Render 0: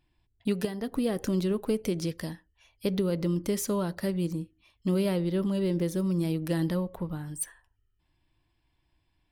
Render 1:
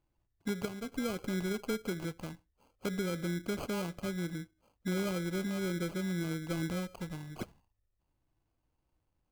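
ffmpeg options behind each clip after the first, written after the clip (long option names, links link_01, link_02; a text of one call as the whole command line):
ffmpeg -i in.wav -af "acrusher=samples=24:mix=1:aa=0.000001,volume=-7dB" out.wav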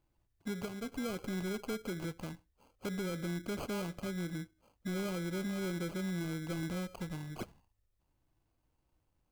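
ffmpeg -i in.wav -filter_complex "[0:a]asplit=2[link_01][link_02];[link_02]alimiter=level_in=9dB:limit=-24dB:level=0:latency=1:release=205,volume=-9dB,volume=0.5dB[link_03];[link_01][link_03]amix=inputs=2:normalize=0,asoftclip=type=tanh:threshold=-26dB,volume=-4.5dB" out.wav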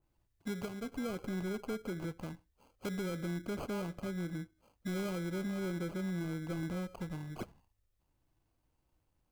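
ffmpeg -i in.wav -af "adynamicequalizer=threshold=0.00158:dfrequency=2000:dqfactor=0.7:tfrequency=2000:tqfactor=0.7:attack=5:release=100:ratio=0.375:range=3:mode=cutabove:tftype=highshelf" out.wav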